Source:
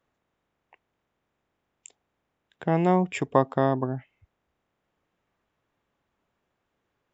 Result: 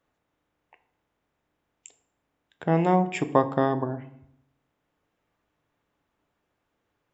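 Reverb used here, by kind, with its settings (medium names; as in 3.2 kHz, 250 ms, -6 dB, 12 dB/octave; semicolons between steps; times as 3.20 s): FDN reverb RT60 0.7 s, low-frequency decay 1.3×, high-frequency decay 0.7×, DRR 9 dB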